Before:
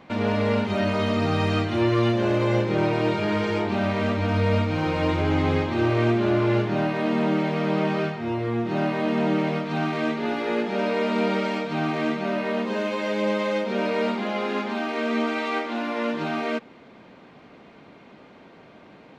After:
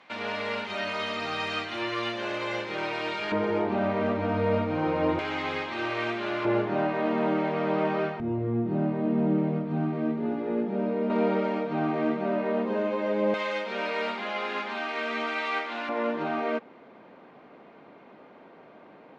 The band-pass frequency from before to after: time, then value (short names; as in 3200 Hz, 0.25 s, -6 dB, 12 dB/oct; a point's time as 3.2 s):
band-pass, Q 0.53
2700 Hz
from 3.32 s 570 Hz
from 5.19 s 2300 Hz
from 6.45 s 770 Hz
from 8.2 s 170 Hz
from 11.1 s 460 Hz
from 13.34 s 2000 Hz
from 15.89 s 700 Hz